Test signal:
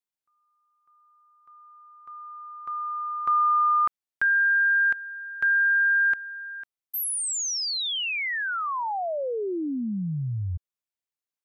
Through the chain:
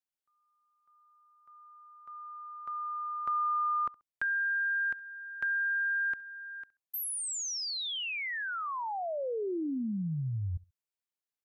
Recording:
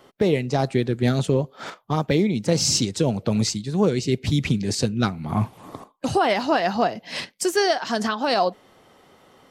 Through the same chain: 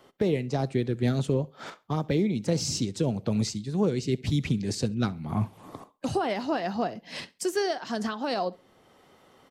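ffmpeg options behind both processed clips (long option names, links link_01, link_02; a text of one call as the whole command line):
ffmpeg -i in.wav -filter_complex "[0:a]acrossover=split=480[link_01][link_02];[link_02]acompressor=threshold=-34dB:ratio=1.5:release=988:knee=2.83:detection=peak[link_03];[link_01][link_03]amix=inputs=2:normalize=0,aecho=1:1:67|134:0.0708|0.0177,volume=-4.5dB" out.wav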